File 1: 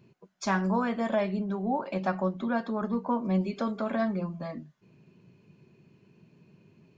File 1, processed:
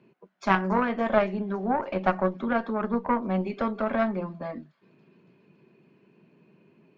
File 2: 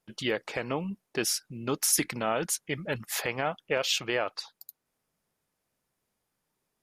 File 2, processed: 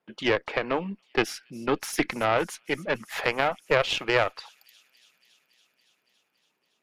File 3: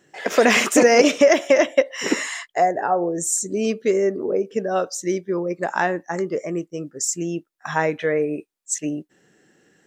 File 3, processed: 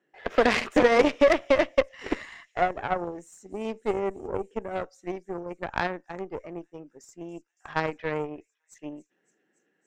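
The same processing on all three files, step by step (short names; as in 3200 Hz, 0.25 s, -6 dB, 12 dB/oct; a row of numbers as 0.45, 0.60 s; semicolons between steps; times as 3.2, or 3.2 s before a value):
three-band isolator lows -21 dB, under 180 Hz, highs -18 dB, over 3300 Hz; thin delay 0.281 s, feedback 76%, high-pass 5500 Hz, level -15.5 dB; added harmonics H 6 -20 dB, 7 -21 dB, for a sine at -2.5 dBFS; match loudness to -27 LUFS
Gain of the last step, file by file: +12.0, +13.5, -5.0 dB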